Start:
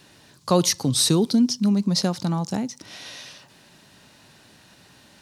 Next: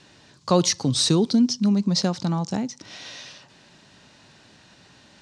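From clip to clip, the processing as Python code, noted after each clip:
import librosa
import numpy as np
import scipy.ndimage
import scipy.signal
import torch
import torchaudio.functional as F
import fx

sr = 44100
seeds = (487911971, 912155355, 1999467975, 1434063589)

y = scipy.signal.sosfilt(scipy.signal.butter(4, 7600.0, 'lowpass', fs=sr, output='sos'), x)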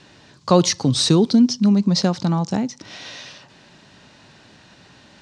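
y = fx.high_shelf(x, sr, hz=5800.0, db=-6.5)
y = y * librosa.db_to_amplitude(4.5)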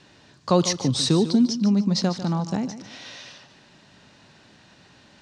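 y = fx.echo_feedback(x, sr, ms=148, feedback_pct=33, wet_db=-12.5)
y = y * librosa.db_to_amplitude(-4.5)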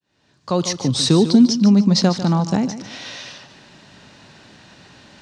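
y = fx.fade_in_head(x, sr, length_s=1.4)
y = y * librosa.db_to_amplitude(7.0)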